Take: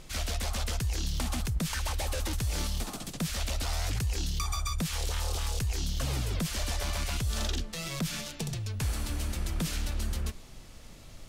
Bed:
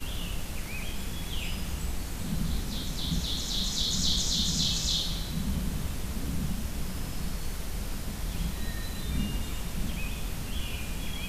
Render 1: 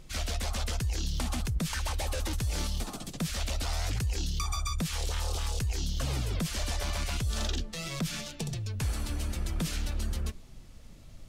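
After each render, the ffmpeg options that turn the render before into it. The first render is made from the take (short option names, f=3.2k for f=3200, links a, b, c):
-af "afftdn=nr=7:nf=-48"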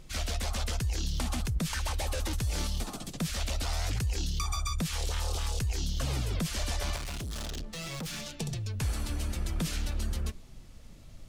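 -filter_complex "[0:a]asettb=1/sr,asplit=3[a][b][c];[a]atrim=end=6.964[d];[b]atrim=start=6.96:end=8.26,asetpts=PTS-STARTPTS,afade=t=in:d=0.004:c=qsin,afade=t=out:st=1.296:d=0.004:c=qsin,asoftclip=type=hard:threshold=-34.5dB[e];[c]atrim=start=8.256[f];[d][e]acrossfade=d=0.004:c1=hsin:c2=qsin[g];[g][f]acrossfade=d=0.004:c1=qsin:c2=hsin"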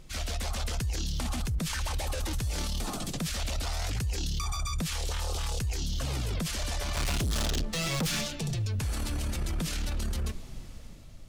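-af "dynaudnorm=f=110:g=11:m=8dB,alimiter=level_in=1dB:limit=-24dB:level=0:latency=1:release=13,volume=-1dB"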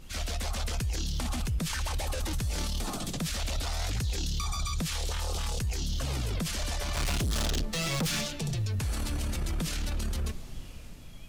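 -filter_complex "[1:a]volume=-18dB[a];[0:a][a]amix=inputs=2:normalize=0"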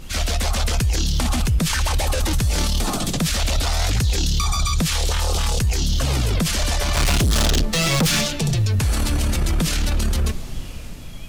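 -af "volume=11.5dB"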